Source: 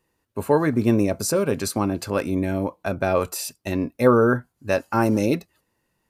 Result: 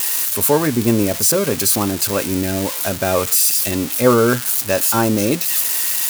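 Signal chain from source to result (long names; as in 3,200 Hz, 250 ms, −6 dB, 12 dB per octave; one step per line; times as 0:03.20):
spike at every zero crossing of −13.5 dBFS
level +3 dB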